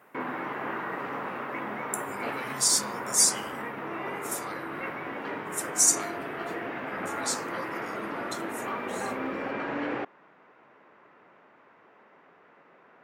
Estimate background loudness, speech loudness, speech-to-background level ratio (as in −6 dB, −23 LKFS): −34.5 LKFS, −26.0 LKFS, 8.5 dB